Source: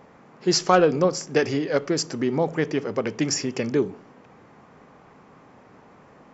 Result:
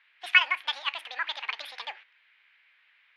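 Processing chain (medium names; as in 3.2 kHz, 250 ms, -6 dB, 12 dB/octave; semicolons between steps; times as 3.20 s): gate -44 dBFS, range -11 dB; speed mistake 7.5 ips tape played at 15 ips; Butterworth band-pass 2.4 kHz, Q 1.5; trim +4.5 dB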